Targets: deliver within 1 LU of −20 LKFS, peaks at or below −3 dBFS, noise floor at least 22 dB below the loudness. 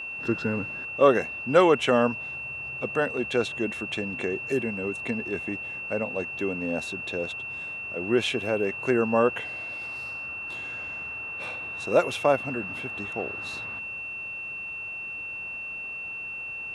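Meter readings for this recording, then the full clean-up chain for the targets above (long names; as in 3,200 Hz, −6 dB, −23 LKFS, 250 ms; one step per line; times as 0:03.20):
interfering tone 2,700 Hz; level of the tone −33 dBFS; integrated loudness −27.5 LKFS; sample peak −5.5 dBFS; target loudness −20.0 LKFS
→ notch filter 2,700 Hz, Q 30
level +7.5 dB
brickwall limiter −3 dBFS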